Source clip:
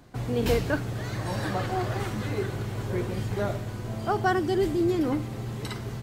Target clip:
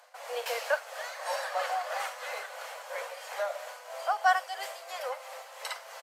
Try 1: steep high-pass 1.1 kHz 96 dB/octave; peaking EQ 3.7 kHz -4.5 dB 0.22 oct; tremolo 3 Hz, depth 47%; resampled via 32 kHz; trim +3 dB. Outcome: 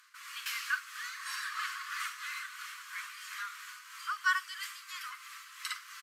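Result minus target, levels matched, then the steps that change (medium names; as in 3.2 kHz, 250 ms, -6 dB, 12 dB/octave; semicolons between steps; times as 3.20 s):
1 kHz band -5.0 dB
change: steep high-pass 510 Hz 96 dB/octave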